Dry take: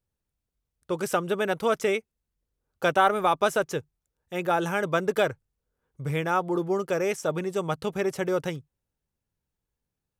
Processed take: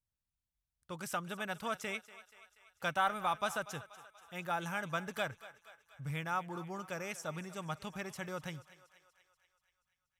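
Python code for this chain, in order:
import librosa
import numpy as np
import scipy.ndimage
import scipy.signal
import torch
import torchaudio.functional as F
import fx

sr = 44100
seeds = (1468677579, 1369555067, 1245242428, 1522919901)

p1 = fx.peak_eq(x, sr, hz=410.0, db=-14.5, octaves=1.0)
p2 = p1 + fx.echo_thinned(p1, sr, ms=240, feedback_pct=62, hz=470.0, wet_db=-16.0, dry=0)
y = p2 * librosa.db_to_amplitude(-8.0)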